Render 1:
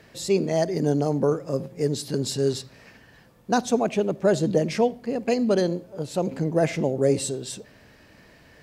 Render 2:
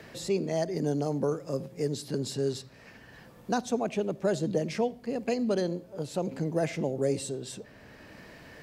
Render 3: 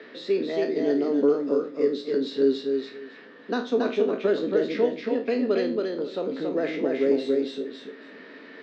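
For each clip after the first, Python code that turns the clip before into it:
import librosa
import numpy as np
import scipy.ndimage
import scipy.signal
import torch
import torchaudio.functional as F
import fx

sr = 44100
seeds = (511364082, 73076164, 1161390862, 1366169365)

y1 = fx.band_squash(x, sr, depth_pct=40)
y1 = y1 * 10.0 ** (-6.5 / 20.0)
y2 = fx.spec_trails(y1, sr, decay_s=0.32)
y2 = fx.cabinet(y2, sr, low_hz=230.0, low_slope=24, high_hz=4300.0, hz=(270.0, 430.0, 800.0, 1300.0, 1900.0, 3700.0), db=(10, 9, -5, 6, 6, 7))
y2 = fx.echo_feedback(y2, sr, ms=277, feedback_pct=18, wet_db=-3.5)
y2 = y2 * 10.0 ** (-2.0 / 20.0)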